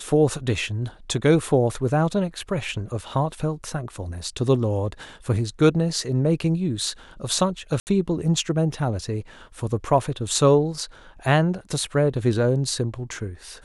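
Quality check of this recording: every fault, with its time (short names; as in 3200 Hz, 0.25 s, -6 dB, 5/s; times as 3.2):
7.8–7.87 gap 69 ms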